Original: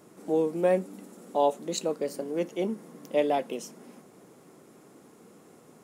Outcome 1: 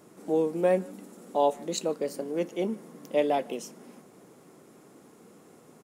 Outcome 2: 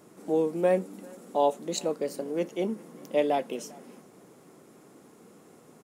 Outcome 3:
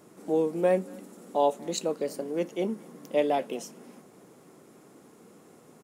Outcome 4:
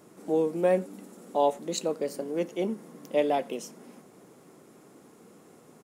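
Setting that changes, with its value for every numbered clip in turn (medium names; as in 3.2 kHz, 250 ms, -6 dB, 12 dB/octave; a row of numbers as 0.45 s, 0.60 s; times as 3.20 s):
speakerphone echo, time: 150 ms, 400 ms, 230 ms, 90 ms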